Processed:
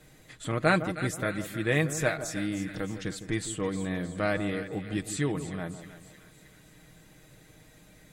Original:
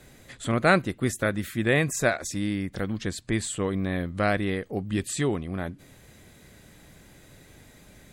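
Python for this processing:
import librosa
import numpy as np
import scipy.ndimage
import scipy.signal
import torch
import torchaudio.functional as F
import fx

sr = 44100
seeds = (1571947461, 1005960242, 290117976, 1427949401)

p1 = x + 0.52 * np.pad(x, (int(6.4 * sr / 1000.0), 0))[:len(x)]
p2 = p1 + fx.echo_split(p1, sr, split_hz=1300.0, low_ms=158, high_ms=311, feedback_pct=52, wet_db=-11.0, dry=0)
y = p2 * librosa.db_to_amplitude(-5.0)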